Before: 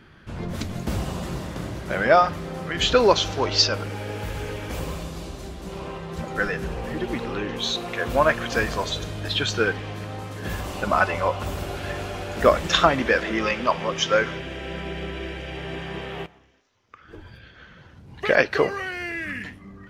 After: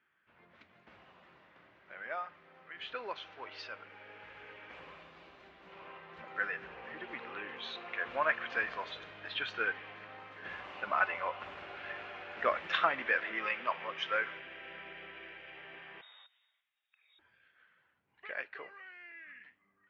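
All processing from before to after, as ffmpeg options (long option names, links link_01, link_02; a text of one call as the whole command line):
ffmpeg -i in.wav -filter_complex "[0:a]asettb=1/sr,asplit=3[link_01][link_02][link_03];[link_01]atrim=end=16.014[link_04];[link_02]atrim=start=16.01:end=17.19,asetpts=PTS-STARTPTS,afade=type=in:duration=0.004:curve=qsin,afade=type=out:start_time=1.176:duration=0.004:curve=qsin,lowshelf=frequency=110:gain=9.5,acrossover=split=150|3000[link_05][link_06][link_07];[link_06]acompressor=threshold=-53dB:ratio=2.5:attack=3.2:release=140:knee=2.83:detection=peak[link_08];[link_05][link_08][link_07]amix=inputs=3:normalize=0,lowpass=frequency=3200:width_type=q:width=0.5098,lowpass=frequency=3200:width_type=q:width=0.6013,lowpass=frequency=3200:width_type=q:width=0.9,lowpass=frequency=3200:width_type=q:width=2.563,afreqshift=-3800[link_09];[link_03]atrim=start=17.186[link_10];[link_04][link_09]acrossfade=duration=0.004:curve1=hsin:curve2=qsin[link_11];[link_11][link_10]acrossfade=duration=0.004:curve1=qsin:curve2=hsin,lowpass=frequency=2300:width=0.5412,lowpass=frequency=2300:width=1.3066,aderivative,dynaudnorm=framelen=300:gausssize=31:maxgain=13dB,volume=-7dB" out.wav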